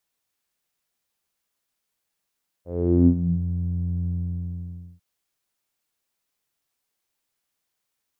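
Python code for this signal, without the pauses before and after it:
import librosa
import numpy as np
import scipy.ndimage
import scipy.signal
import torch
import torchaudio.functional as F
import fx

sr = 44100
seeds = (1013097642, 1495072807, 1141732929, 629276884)

y = fx.sub_voice(sr, note=41, wave='saw', cutoff_hz=140.0, q=5.7, env_oct=2.0, env_s=0.77, attack_ms=417.0, decay_s=0.08, sustain_db=-10, release_s=0.91, note_s=1.44, slope=12)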